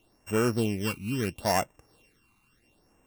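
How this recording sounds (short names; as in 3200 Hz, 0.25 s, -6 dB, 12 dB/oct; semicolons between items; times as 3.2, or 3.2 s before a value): a buzz of ramps at a fixed pitch in blocks of 16 samples; phasing stages 12, 0.74 Hz, lowest notch 550–4300 Hz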